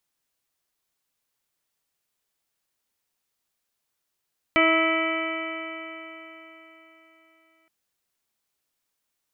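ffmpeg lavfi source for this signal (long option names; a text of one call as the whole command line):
ffmpeg -f lavfi -i "aevalsrc='0.0794*pow(10,-3*t/3.91)*sin(2*PI*323.15*t)+0.0794*pow(10,-3*t/3.91)*sin(2*PI*647.17*t)+0.0224*pow(10,-3*t/3.91)*sin(2*PI*972.96*t)+0.075*pow(10,-3*t/3.91)*sin(2*PI*1301.37*t)+0.0106*pow(10,-3*t/3.91)*sin(2*PI*1633.27*t)+0.0668*pow(10,-3*t/3.91)*sin(2*PI*1969.49*t)+0.0944*pow(10,-3*t/3.91)*sin(2*PI*2310.86*t)+0.0112*pow(10,-3*t/3.91)*sin(2*PI*2658.18*t)+0.0335*pow(10,-3*t/3.91)*sin(2*PI*3012.23*t)':duration=3.12:sample_rate=44100" out.wav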